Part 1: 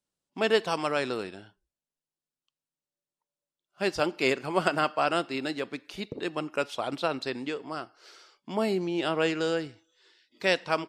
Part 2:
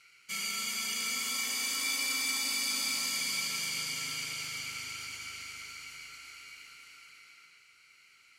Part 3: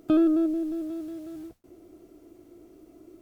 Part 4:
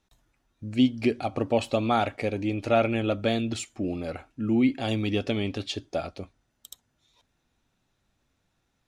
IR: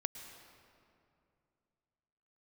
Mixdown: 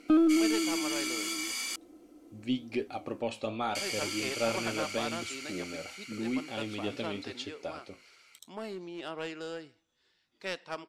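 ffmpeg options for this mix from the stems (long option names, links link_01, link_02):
-filter_complex "[0:a]aeval=exprs='clip(val(0),-1,0.0531)':channel_layout=same,volume=-10.5dB[link_01];[1:a]alimiter=level_in=0.5dB:limit=-24dB:level=0:latency=1:release=285,volume=-0.5dB,volume=0dB,asplit=3[link_02][link_03][link_04];[link_02]atrim=end=1.76,asetpts=PTS-STARTPTS,afade=type=out:start_time=1.756:duration=0.004:curve=hsin[link_05];[link_03]atrim=start=1.76:end=3.75,asetpts=PTS-STARTPTS,volume=0[link_06];[link_04]atrim=start=3.75,asetpts=PTS-STARTPTS,afade=type=in:duration=0.004:curve=hsin[link_07];[link_05][link_06][link_07]concat=n=3:v=0:a=1[link_08];[2:a]aecho=1:1:3.9:0.65,volume=-2dB[link_09];[3:a]bandreject=frequency=680:width=12,flanger=delay=9.5:depth=9.8:regen=67:speed=0.87:shape=triangular,adelay=1700,volume=-3dB[link_10];[link_01][link_08][link_09][link_10]amix=inputs=4:normalize=0,lowpass=12000,lowshelf=frequency=140:gain=-11.5,aeval=exprs='0.168*(cos(1*acos(clip(val(0)/0.168,-1,1)))-cos(1*PI/2))+0.00335*(cos(4*acos(clip(val(0)/0.168,-1,1)))-cos(4*PI/2))':channel_layout=same"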